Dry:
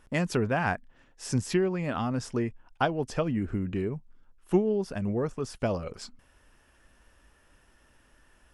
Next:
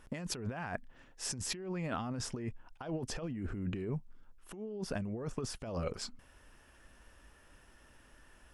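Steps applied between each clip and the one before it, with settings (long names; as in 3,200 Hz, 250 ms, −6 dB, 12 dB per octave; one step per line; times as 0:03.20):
compressor whose output falls as the input rises −34 dBFS, ratio −1
level −4.5 dB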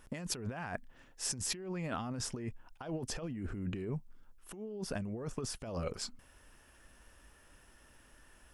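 high-shelf EQ 7,200 Hz +7 dB
level −1 dB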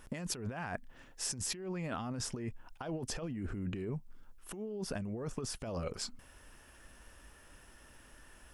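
downward compressor 2 to 1, threshold −41 dBFS, peak gain reduction 5.5 dB
level +3.5 dB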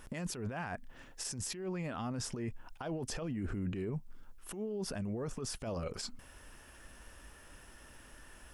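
brickwall limiter −32.5 dBFS, peak gain reduction 11 dB
level +2.5 dB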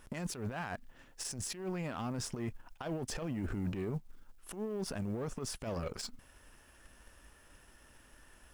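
mu-law and A-law mismatch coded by A
level +3 dB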